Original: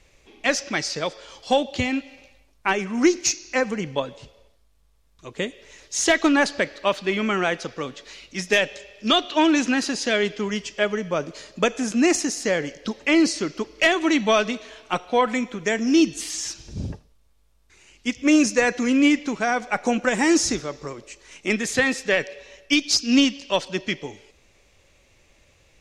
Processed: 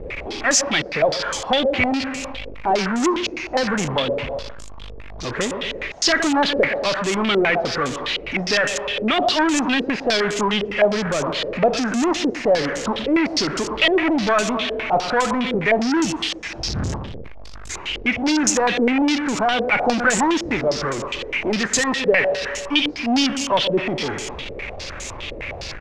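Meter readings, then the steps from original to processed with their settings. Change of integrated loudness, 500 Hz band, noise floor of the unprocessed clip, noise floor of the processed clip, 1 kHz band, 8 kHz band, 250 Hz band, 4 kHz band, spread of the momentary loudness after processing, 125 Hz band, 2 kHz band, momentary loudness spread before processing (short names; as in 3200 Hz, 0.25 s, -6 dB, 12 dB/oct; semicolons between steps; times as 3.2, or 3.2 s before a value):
+2.0 dB, +3.5 dB, -60 dBFS, -34 dBFS, +5.0 dB, +2.0 dB, +0.5 dB, +4.0 dB, 12 LU, +6.0 dB, +3.0 dB, 13 LU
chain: feedback echo 0.117 s, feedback 39%, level -18.5 dB; power-law curve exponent 0.35; stepped low-pass 9.8 Hz 480–7200 Hz; gain -7.5 dB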